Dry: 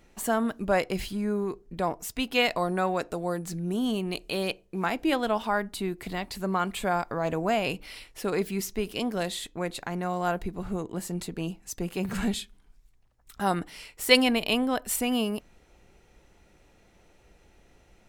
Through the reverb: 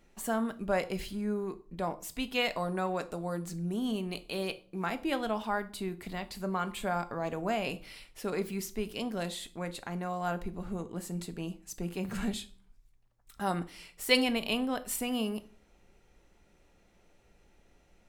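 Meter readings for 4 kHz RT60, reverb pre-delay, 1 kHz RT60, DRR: 0.35 s, 3 ms, 0.40 s, 11.0 dB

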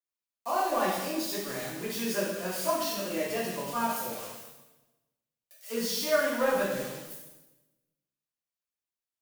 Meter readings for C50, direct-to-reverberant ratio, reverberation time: 1.0 dB, -9.0 dB, 1.1 s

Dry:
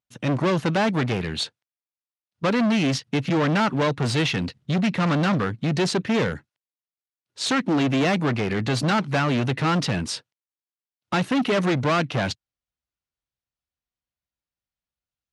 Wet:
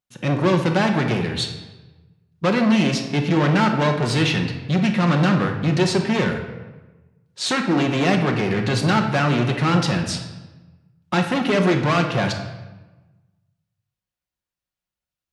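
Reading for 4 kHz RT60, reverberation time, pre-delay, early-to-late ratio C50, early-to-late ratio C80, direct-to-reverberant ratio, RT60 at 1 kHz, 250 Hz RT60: 0.85 s, 1.2 s, 5 ms, 6.5 dB, 9.0 dB, 3.0 dB, 1.1 s, 1.3 s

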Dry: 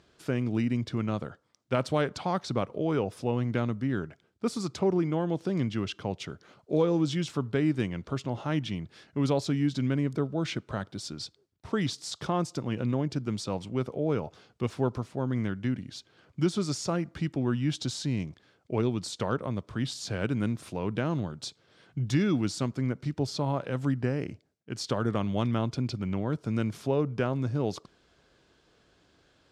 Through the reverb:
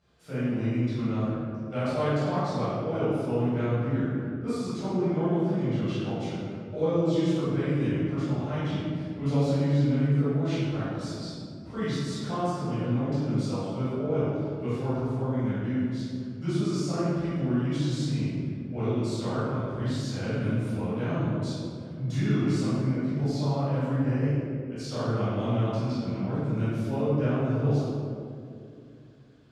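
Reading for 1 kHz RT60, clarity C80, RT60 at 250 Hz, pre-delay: 2.1 s, -2.0 dB, 3.2 s, 12 ms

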